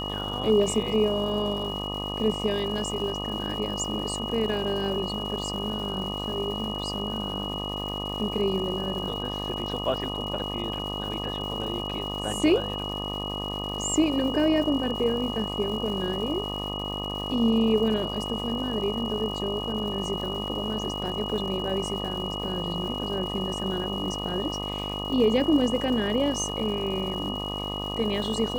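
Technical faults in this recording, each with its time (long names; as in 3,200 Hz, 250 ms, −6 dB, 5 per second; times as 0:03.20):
mains buzz 50 Hz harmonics 25 −34 dBFS
surface crackle 400 per second −37 dBFS
whistle 2,900 Hz −33 dBFS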